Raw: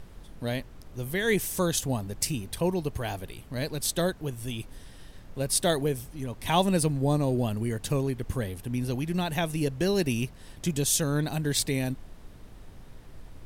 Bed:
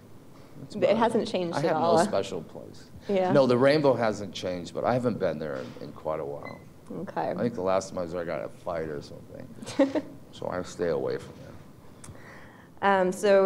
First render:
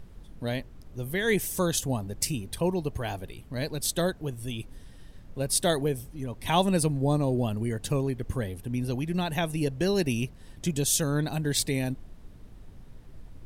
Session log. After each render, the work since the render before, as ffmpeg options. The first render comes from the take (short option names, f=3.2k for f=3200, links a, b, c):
-af "afftdn=nr=6:nf=-48"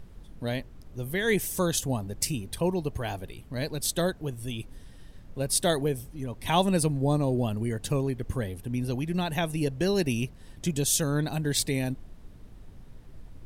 -af anull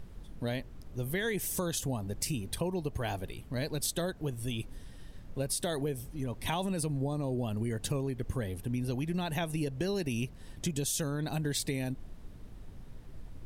-af "alimiter=limit=-18dB:level=0:latency=1:release=30,acompressor=threshold=-29dB:ratio=6"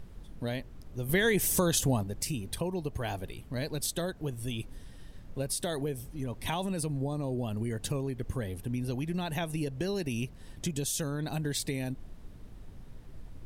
-filter_complex "[0:a]asplit=3[a][b][c];[a]atrim=end=1.092[d];[b]atrim=start=1.088:end=2.032,asetpts=PTS-STARTPTS,volume=6.5dB[e];[c]atrim=start=2.028[f];[d][e]acrossfade=d=0.004:c1=hsin:c2=hsin[g];[g][f]acrossfade=d=0.004:c1=hsin:c2=hsin"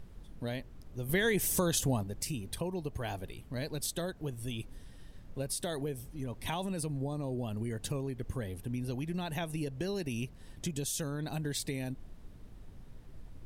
-af "volume=-3dB"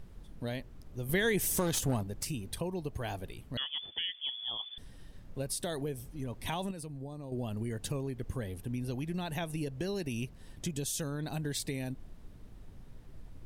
-filter_complex "[0:a]asettb=1/sr,asplit=3[a][b][c];[a]atrim=end=1.574[d];[b]atrim=start=1.57:end=2.28,asetpts=PTS-STARTPTS,afade=t=in:d=0.004:c=qsin,afade=t=out:st=0.706:d=0.004:c=qsin,aeval=exprs='clip(val(0),-1,0.0282)':c=same[e];[c]atrim=start=2.276[f];[d][e]acrossfade=d=0.004:c1=hsin:c2=qsin[g];[g][f]acrossfade=d=0.004:c1=qsin:c2=hsin,asettb=1/sr,asplit=3[h][i][j];[h]atrim=end=3.574[k];[i]atrim=start=3.57:end=4.78,asetpts=PTS-STARTPTS,afade=t=in:d=0.004:c=qsin,afade=t=out:st=1.206:d=0.004:c=qsin,lowpass=f=3k:t=q:w=0.5098,lowpass=f=3k:t=q:w=0.6013,lowpass=f=3k:t=q:w=0.9,lowpass=f=3k:t=q:w=2.563,afreqshift=-3500[l];[j]atrim=start=4.776[m];[k][l]acrossfade=d=0.004:c1=hsin:c2=qsin[n];[n][m]acrossfade=d=0.004:c1=qsin:c2=hsin,asplit=3[o][p][q];[o]atrim=end=6.712[r];[p]atrim=start=6.708:end=7.322,asetpts=PTS-STARTPTS,volume=-7dB[s];[q]atrim=start=7.318[t];[r][s]acrossfade=d=0.004:c1=hsin:c2=hsin[u];[u][t]acrossfade=d=0.004:c1=hsin:c2=hsin"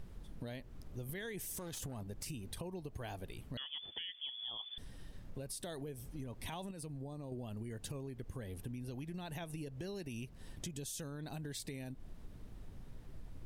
-af "alimiter=level_in=3dB:limit=-24dB:level=0:latency=1:release=52,volume=-3dB,acompressor=threshold=-41dB:ratio=6"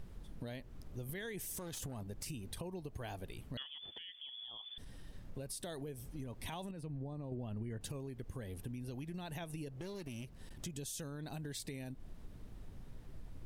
-filter_complex "[0:a]asettb=1/sr,asplit=3[a][b][c];[a]atrim=end=3.624[d];[b]atrim=start=3.62:end=5.07,asetpts=PTS-STARTPTS,afade=t=in:d=0.004:c=qsin,afade=t=out:st=1.446:d=0.004:c=qsin,acompressor=threshold=-45dB:ratio=6:attack=3.2:release=140:knee=1:detection=peak[e];[c]atrim=start=5.066[f];[d][e]acrossfade=d=0.004:c1=hsin:c2=qsin[g];[g][f]acrossfade=d=0.004:c1=qsin:c2=hsin,asettb=1/sr,asplit=3[h][i][j];[h]atrim=end=6.714[k];[i]atrim=start=6.71:end=7.81,asetpts=PTS-STARTPTS,afade=t=in:d=0.004:c=qsin,afade=t=out:st=1.096:d=0.004:c=qsin,bass=f=250:g=3,treble=f=4k:g=-13[l];[j]atrim=start=7.806[m];[k][l]acrossfade=d=0.004:c1=hsin:c2=qsin[n];[n][m]acrossfade=d=0.004:c1=qsin:c2=hsin,asettb=1/sr,asplit=3[o][p][q];[o]atrim=end=9.694[r];[p]atrim=start=9.69:end=10.65,asetpts=PTS-STARTPTS,afade=t=in:d=0.004:c=qsin,afade=t=out:st=0.956:d=0.004:c=qsin,aeval=exprs='clip(val(0),-1,0.00473)':c=same[s];[q]atrim=start=10.646[t];[r][s]acrossfade=d=0.004:c1=hsin:c2=qsin[u];[u][t]acrossfade=d=0.004:c1=qsin:c2=hsin"